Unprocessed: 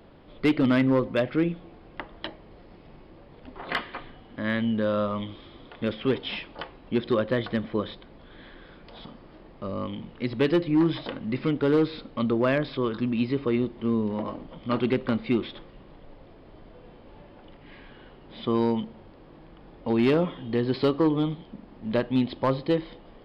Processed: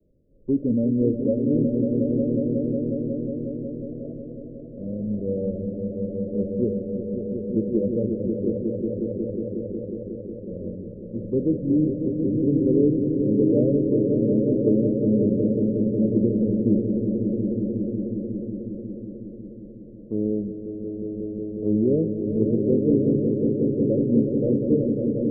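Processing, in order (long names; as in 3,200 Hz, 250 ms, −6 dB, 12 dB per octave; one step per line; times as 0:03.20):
Butterworth low-pass 660 Hz 96 dB per octave
echo that builds up and dies away 167 ms, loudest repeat 5, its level −6 dB
wrong playback speed 48 kHz file played as 44.1 kHz
multiband upward and downward expander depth 40%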